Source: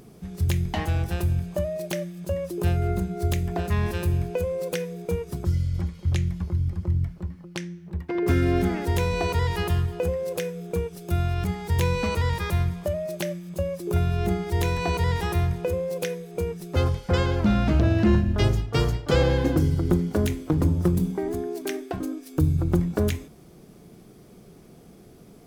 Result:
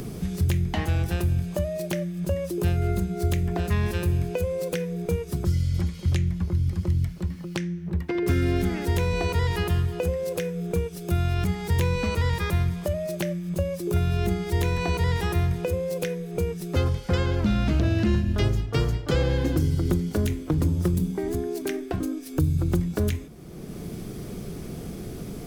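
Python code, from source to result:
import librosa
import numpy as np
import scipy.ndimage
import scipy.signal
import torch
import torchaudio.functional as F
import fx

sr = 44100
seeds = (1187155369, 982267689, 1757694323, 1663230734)

y = fx.peak_eq(x, sr, hz=820.0, db=-4.0, octaves=1.3)
y = fx.band_squash(y, sr, depth_pct=70)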